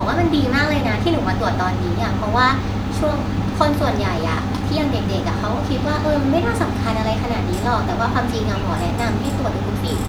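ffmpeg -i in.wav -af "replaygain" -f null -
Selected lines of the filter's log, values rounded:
track_gain = +1.8 dB
track_peak = 0.620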